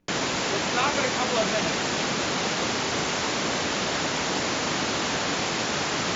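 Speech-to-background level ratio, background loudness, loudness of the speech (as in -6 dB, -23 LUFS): -4.0 dB, -25.5 LUFS, -29.5 LUFS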